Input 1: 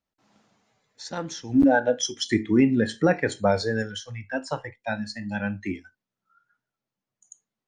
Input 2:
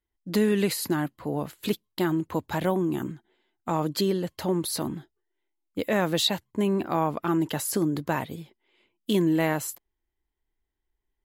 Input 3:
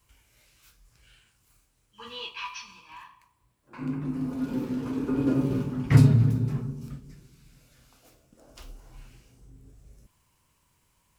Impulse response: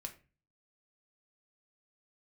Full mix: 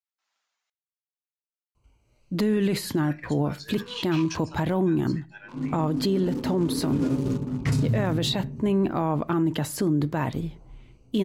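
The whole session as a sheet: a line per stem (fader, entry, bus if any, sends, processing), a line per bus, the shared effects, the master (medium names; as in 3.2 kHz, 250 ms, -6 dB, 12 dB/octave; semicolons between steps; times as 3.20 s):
-12.0 dB, 0.00 s, muted 0.70–2.85 s, send -4.5 dB, high-pass 1.4 kHz 12 dB/octave
+1.0 dB, 2.05 s, send -7 dB, low-pass 3.9 kHz 6 dB/octave; bass shelf 210 Hz +9.5 dB
+1.5 dB, 1.75 s, no send, local Wiener filter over 25 samples; peaking EQ 6.6 kHz +10 dB 1.8 oct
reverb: on, RT60 0.35 s, pre-delay 3 ms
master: peak limiter -16 dBFS, peak gain reduction 12 dB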